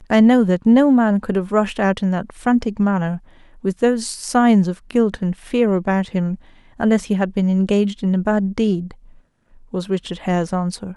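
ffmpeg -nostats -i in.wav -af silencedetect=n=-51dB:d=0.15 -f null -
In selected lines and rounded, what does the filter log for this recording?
silence_start: 9.22
silence_end: 9.50 | silence_duration: 0.28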